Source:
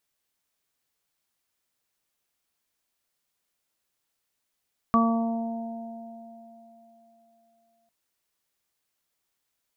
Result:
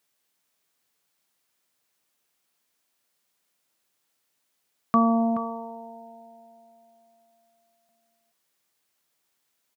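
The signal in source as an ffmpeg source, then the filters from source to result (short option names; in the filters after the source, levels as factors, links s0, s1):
-f lavfi -i "aevalsrc='0.112*pow(10,-3*t/3.01)*sin(2*PI*229*t)+0.0224*pow(10,-3*t/2.01)*sin(2*PI*458*t)+0.0473*pow(10,-3*t/4.24)*sin(2*PI*687*t)+0.0211*pow(10,-3*t/2.47)*sin(2*PI*916*t)+0.133*pow(10,-3*t/0.64)*sin(2*PI*1145*t)':d=2.95:s=44100"
-filter_complex "[0:a]asplit=2[s0][s1];[s1]alimiter=limit=0.075:level=0:latency=1,volume=0.708[s2];[s0][s2]amix=inputs=2:normalize=0,highpass=130,asplit=2[s3][s4];[s4]adelay=425.7,volume=0.282,highshelf=f=4000:g=-9.58[s5];[s3][s5]amix=inputs=2:normalize=0"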